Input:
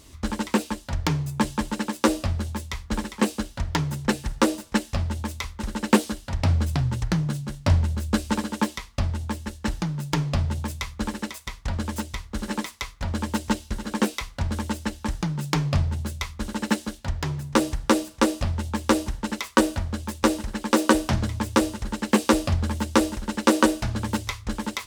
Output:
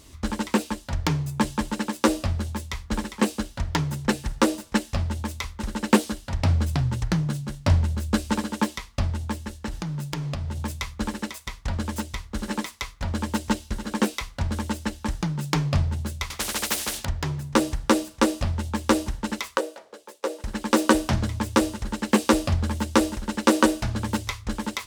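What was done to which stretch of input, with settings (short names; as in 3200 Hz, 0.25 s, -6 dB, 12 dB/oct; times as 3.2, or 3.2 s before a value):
9.45–10.6 compressor, threshold -26 dBFS
16.3–17.05 spectral compressor 4:1
19.57–20.44 ladder high-pass 410 Hz, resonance 60%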